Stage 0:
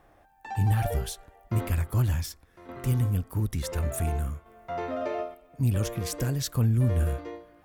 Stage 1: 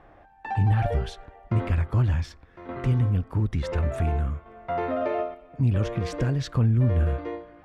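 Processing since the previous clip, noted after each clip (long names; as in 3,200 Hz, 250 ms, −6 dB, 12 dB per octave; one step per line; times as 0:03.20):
low-pass filter 2,900 Hz 12 dB per octave
in parallel at +1 dB: downward compressor, threshold −32 dBFS, peak gain reduction 12 dB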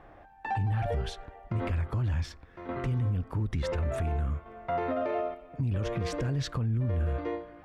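brickwall limiter −22.5 dBFS, peak gain reduction 10 dB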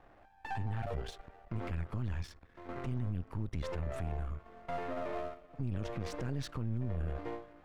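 gain on one half-wave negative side −12 dB
level −4.5 dB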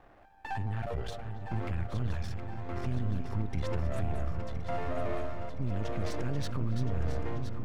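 feedback delay that plays each chunk backwards 509 ms, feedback 72%, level −8 dB
feedback echo with a low-pass in the loop 279 ms, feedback 74%, low-pass 1,400 Hz, level −13 dB
level +2.5 dB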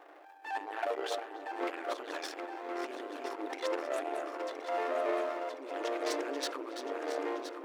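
transient designer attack −9 dB, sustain +10 dB
linear-phase brick-wall high-pass 280 Hz
level +4 dB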